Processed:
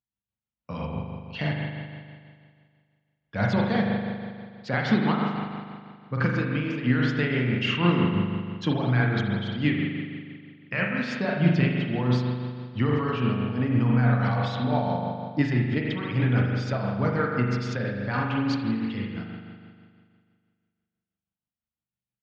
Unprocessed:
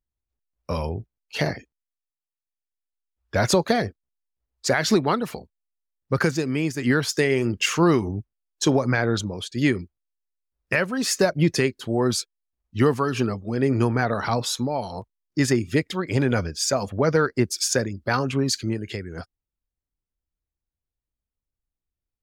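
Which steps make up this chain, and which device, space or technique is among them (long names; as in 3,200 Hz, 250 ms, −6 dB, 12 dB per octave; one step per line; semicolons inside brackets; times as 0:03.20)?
combo amplifier with spring reverb and tremolo (spring reverb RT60 2 s, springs 40 ms, chirp 45 ms, DRR −2 dB; amplitude tremolo 6.1 Hz, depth 39%; loudspeaker in its box 97–3,900 Hz, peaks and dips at 120 Hz +7 dB, 200 Hz +8 dB, 380 Hz −9 dB, 580 Hz −4 dB, 3,000 Hz +4 dB)
0:14.64–0:15.42: parametric band 430 Hz +5.5 dB 2.4 octaves
level −5 dB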